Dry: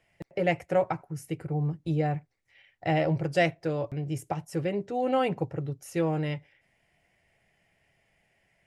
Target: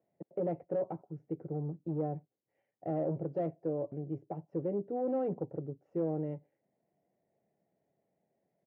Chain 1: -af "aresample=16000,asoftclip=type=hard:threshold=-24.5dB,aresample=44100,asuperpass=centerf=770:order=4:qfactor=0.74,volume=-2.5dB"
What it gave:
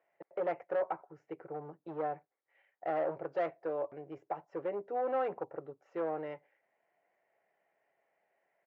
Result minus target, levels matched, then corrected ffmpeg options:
250 Hz band −8.0 dB
-af "aresample=16000,asoftclip=type=hard:threshold=-24.5dB,aresample=44100,asuperpass=centerf=340:order=4:qfactor=0.74,volume=-2.5dB"

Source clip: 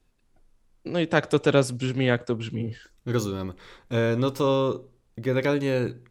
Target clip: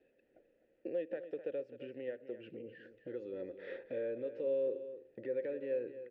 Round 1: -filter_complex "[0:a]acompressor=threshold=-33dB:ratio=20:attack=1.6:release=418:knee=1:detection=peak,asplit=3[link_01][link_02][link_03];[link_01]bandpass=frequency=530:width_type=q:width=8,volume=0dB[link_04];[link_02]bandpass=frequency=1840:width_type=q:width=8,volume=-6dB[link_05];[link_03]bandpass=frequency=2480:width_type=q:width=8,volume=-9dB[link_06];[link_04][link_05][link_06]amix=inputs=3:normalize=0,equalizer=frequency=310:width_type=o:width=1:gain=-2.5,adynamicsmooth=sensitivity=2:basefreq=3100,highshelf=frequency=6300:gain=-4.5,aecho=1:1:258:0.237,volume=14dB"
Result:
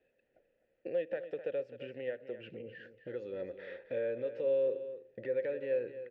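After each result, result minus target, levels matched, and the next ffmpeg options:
downward compressor: peak gain reduction −6.5 dB; 250 Hz band −5.0 dB
-filter_complex "[0:a]acompressor=threshold=-40dB:ratio=20:attack=1.6:release=418:knee=1:detection=peak,asplit=3[link_01][link_02][link_03];[link_01]bandpass=frequency=530:width_type=q:width=8,volume=0dB[link_04];[link_02]bandpass=frequency=1840:width_type=q:width=8,volume=-6dB[link_05];[link_03]bandpass=frequency=2480:width_type=q:width=8,volume=-9dB[link_06];[link_04][link_05][link_06]amix=inputs=3:normalize=0,equalizer=frequency=310:width_type=o:width=1:gain=-2.5,adynamicsmooth=sensitivity=2:basefreq=3100,highshelf=frequency=6300:gain=-4.5,aecho=1:1:258:0.237,volume=14dB"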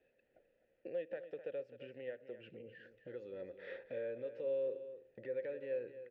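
250 Hz band −4.5 dB
-filter_complex "[0:a]acompressor=threshold=-40dB:ratio=20:attack=1.6:release=418:knee=1:detection=peak,asplit=3[link_01][link_02][link_03];[link_01]bandpass=frequency=530:width_type=q:width=8,volume=0dB[link_04];[link_02]bandpass=frequency=1840:width_type=q:width=8,volume=-6dB[link_05];[link_03]bandpass=frequency=2480:width_type=q:width=8,volume=-9dB[link_06];[link_04][link_05][link_06]amix=inputs=3:normalize=0,equalizer=frequency=310:width_type=o:width=1:gain=7,adynamicsmooth=sensitivity=2:basefreq=3100,highshelf=frequency=6300:gain=-4.5,aecho=1:1:258:0.237,volume=14dB"

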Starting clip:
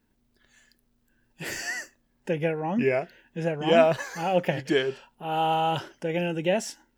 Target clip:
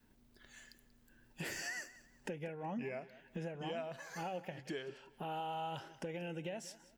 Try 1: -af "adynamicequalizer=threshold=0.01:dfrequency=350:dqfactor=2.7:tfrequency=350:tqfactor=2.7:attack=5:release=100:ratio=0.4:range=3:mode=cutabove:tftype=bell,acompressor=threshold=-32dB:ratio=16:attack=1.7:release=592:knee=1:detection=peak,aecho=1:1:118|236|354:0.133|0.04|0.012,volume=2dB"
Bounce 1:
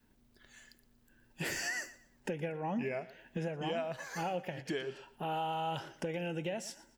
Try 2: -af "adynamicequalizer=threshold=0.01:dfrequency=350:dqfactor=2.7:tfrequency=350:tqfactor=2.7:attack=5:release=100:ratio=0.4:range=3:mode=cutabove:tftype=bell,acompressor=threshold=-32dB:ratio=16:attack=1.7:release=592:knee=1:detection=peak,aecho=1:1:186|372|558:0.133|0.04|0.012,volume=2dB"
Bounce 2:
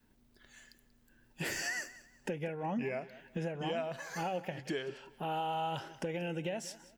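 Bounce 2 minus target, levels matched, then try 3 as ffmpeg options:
downward compressor: peak gain reduction −5.5 dB
-af "adynamicequalizer=threshold=0.01:dfrequency=350:dqfactor=2.7:tfrequency=350:tqfactor=2.7:attack=5:release=100:ratio=0.4:range=3:mode=cutabove:tftype=bell,acompressor=threshold=-38dB:ratio=16:attack=1.7:release=592:knee=1:detection=peak,aecho=1:1:186|372|558:0.133|0.04|0.012,volume=2dB"

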